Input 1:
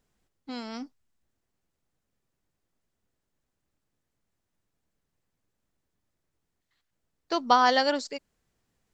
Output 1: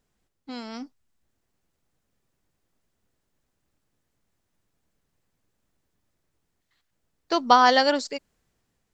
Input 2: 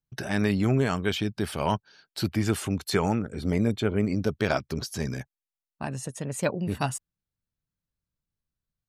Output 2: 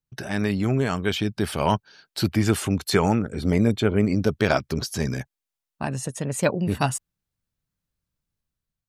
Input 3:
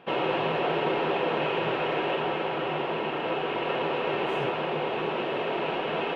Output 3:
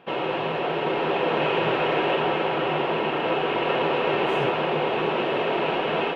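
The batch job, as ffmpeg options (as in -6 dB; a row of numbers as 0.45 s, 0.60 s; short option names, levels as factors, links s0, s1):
-af "dynaudnorm=f=760:g=3:m=1.78"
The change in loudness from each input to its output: +4.0 LU, +4.0 LU, +4.0 LU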